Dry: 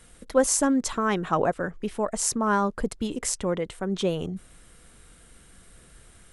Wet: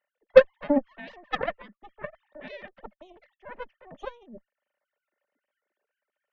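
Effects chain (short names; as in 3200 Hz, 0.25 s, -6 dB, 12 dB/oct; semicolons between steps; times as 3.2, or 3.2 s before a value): sine-wave speech; added harmonics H 2 -15 dB, 4 -19 dB, 7 -16 dB, 8 -30 dB, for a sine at -4 dBFS; small resonant body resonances 210/580/1800 Hz, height 13 dB, ringing for 40 ms; gain -3 dB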